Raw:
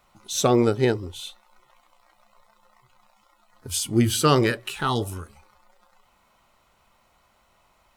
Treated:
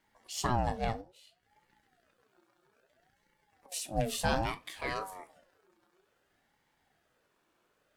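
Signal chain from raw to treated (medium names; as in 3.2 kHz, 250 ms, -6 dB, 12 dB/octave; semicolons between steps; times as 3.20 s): 1.01–3.72 s: compression 5:1, threshold -47 dBFS, peak gain reduction 14.5 dB; reverberation RT60 0.25 s, pre-delay 17 ms, DRR 11.5 dB; ring modulator with a swept carrier 600 Hz, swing 45%, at 0.6 Hz; trim -9 dB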